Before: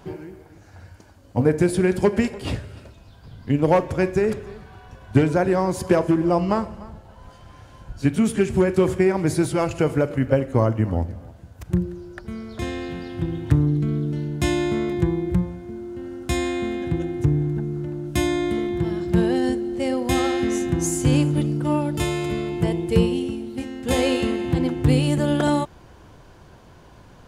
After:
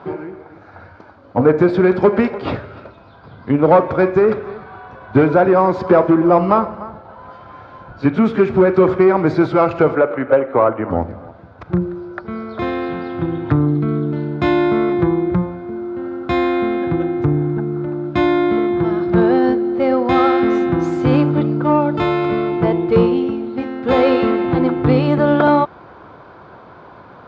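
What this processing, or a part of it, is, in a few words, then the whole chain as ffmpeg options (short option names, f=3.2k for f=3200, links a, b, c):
overdrive pedal into a guitar cabinet: -filter_complex "[0:a]asettb=1/sr,asplit=3[a][b][c];[a]atrim=end=9.954[d];[b]atrim=start=9.95:end=10.9,asetpts=PTS-STARTPTS,afade=t=in:d=0.004:c=qsin,afade=t=out:st=0.946:d=0.004:c=qsin,acrossover=split=310 3700:gain=0.251 1 0.0891[e][f][g];[e][f][g]amix=inputs=3:normalize=0[h];[c]atrim=start=10.896[i];[d][h]acrossfade=d=0.004:c1=hsin:c2=qsin[j];[j][i]acrossfade=d=0.004:c1=qsin:c2=hsin,asplit=2[k][l];[l]highpass=f=720:p=1,volume=17dB,asoftclip=type=tanh:threshold=-3.5dB[m];[k][m]amix=inputs=2:normalize=0,lowpass=f=1.3k:p=1,volume=-6dB,highpass=76,equalizer=f=1.3k:t=q:w=4:g=6,equalizer=f=1.8k:t=q:w=4:g=-5,equalizer=f=2.9k:t=q:w=4:g=-9,lowpass=f=4k:w=0.5412,lowpass=f=4k:w=1.3066,volume=3.5dB"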